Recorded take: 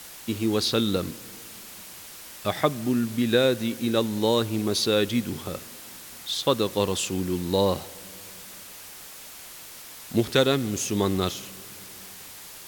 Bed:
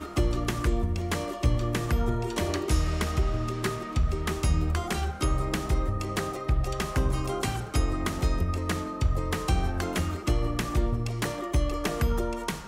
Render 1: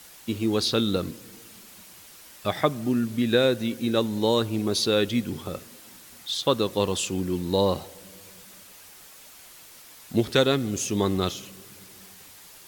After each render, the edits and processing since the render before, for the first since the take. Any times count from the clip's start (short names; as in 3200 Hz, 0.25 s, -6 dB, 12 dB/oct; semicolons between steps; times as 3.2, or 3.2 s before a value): denoiser 6 dB, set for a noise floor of -43 dBFS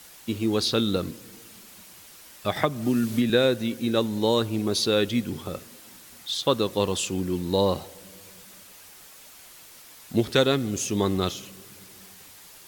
2.56–3.3 three-band squash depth 100%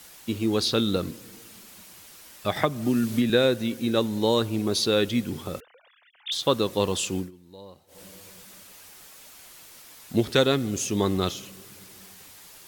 5.6–6.32 sine-wave speech; 7.17–8.01 dip -23 dB, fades 0.14 s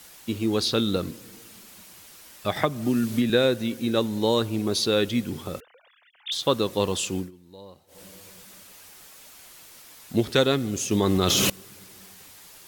10.91–11.5 fast leveller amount 100%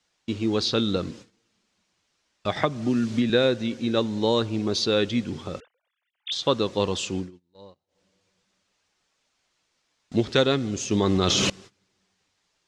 LPF 6700 Hz 24 dB/oct; gate -43 dBFS, range -21 dB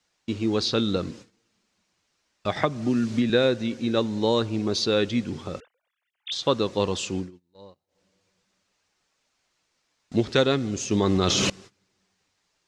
bell 3300 Hz -2.5 dB 0.35 oct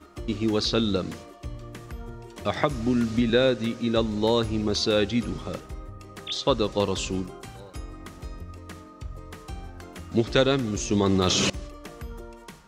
add bed -12.5 dB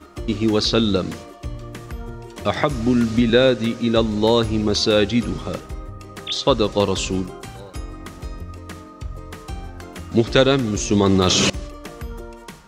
gain +6 dB; limiter -2 dBFS, peak gain reduction 2.5 dB